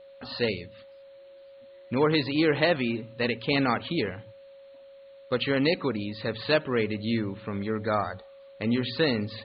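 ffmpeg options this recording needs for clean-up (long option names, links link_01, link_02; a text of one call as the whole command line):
ffmpeg -i in.wav -af "bandreject=frequency=550:width=30,agate=range=-21dB:threshold=-42dB" out.wav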